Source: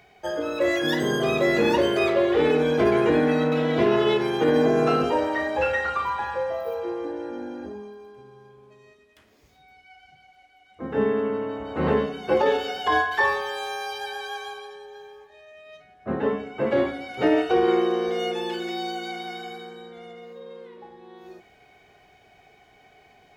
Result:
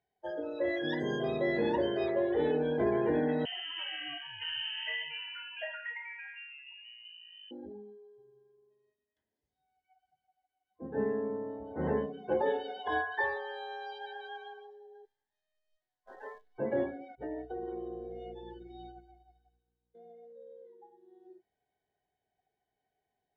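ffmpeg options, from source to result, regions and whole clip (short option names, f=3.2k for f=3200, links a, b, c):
-filter_complex "[0:a]asettb=1/sr,asplit=3[a][b][c];[a]atrim=end=3.454[d];[b]atrim=start=3.45:end=7.51,asetpts=PTS-STARTPTS,afade=t=in:d=0.004:c=qsin,afade=t=out:st=4.056:d=0.004:c=qsin,lowshelf=f=240:g=-8,lowpass=f=2.8k:t=q:w=0.5098,lowpass=f=2.8k:t=q:w=0.6013,lowpass=f=2.8k:t=q:w=0.9,lowpass=f=2.8k:t=q:w=2.563,afreqshift=-3300[e];[c]atrim=start=7.506[f];[d][e]acrossfade=d=0.004:c1=hsin:c2=qsin[g];[g][f]acrossfade=d=0.004:c1=qsin:c2=hsin,asettb=1/sr,asplit=3[h][i][j];[h]atrim=end=15.054[k];[i]atrim=start=15.05:end=16.58,asetpts=PTS-STARTPTS,afade=t=in:d=0.004:c=qsin,afade=t=out:st=1.526:d=0.004:c=qsin,highpass=950,acrusher=bits=7:dc=4:mix=0:aa=0.000001[l];[j]atrim=start=16.576[m];[k][l]acrossfade=d=0.004:c1=hsin:c2=qsin[n];[n][m]acrossfade=d=0.004:c1=qsin:c2=hsin,asettb=1/sr,asplit=3[o][p][q];[o]atrim=end=17.154[r];[p]atrim=start=17.15:end=19.95,asetpts=PTS-STARTPTS,afade=t=in:d=0.004:c=qsin,afade=t=out:st=2.796:d=0.004:c=qsin,aeval=exprs='val(0)+0.0178*(sin(2*PI*60*n/s)+sin(2*PI*2*60*n/s)/2+sin(2*PI*3*60*n/s)/3+sin(2*PI*4*60*n/s)/4+sin(2*PI*5*60*n/s)/5)':c=same,agate=range=-33dB:threshold=-23dB:ratio=3:release=100:detection=peak,acompressor=threshold=-31dB:ratio=2.5:attack=3.2:release=140:knee=1:detection=peak[s];[q]atrim=start=19.946[t];[r][s]acrossfade=d=0.004:c1=hsin:c2=qsin[u];[u][t]acrossfade=d=0.004:c1=qsin:c2=hsin,lowpass=f=3.5k:p=1,afftdn=nr=20:nf=-34,superequalizer=10b=0.316:12b=0.355,volume=-9dB"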